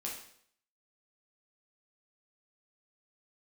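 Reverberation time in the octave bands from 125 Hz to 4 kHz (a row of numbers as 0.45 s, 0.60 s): 0.65 s, 0.60 s, 0.65 s, 0.60 s, 0.60 s, 0.60 s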